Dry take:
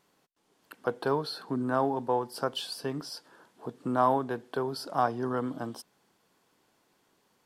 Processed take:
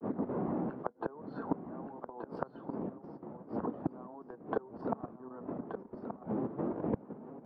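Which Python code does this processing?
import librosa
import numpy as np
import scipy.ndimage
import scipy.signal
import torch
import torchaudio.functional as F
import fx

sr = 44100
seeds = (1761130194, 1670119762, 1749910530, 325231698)

y = fx.dmg_wind(x, sr, seeds[0], corner_hz=330.0, level_db=-27.0)
y = scipy.signal.sosfilt(scipy.signal.cheby1(2, 1.0, [210.0, 1100.0], 'bandpass', fs=sr, output='sos'), y)
y = fx.level_steps(y, sr, step_db=11)
y = fx.granulator(y, sr, seeds[1], grain_ms=185.0, per_s=14.0, spray_ms=12.0, spread_st=0)
y = fx.gate_flip(y, sr, shuts_db=-31.0, range_db=-28)
y = y + 10.0 ** (-11.0 / 20.0) * np.pad(y, (int(1177 * sr / 1000.0), 0))[:len(y)]
y = fx.band_squash(y, sr, depth_pct=40)
y = F.gain(torch.from_numpy(y), 12.5).numpy()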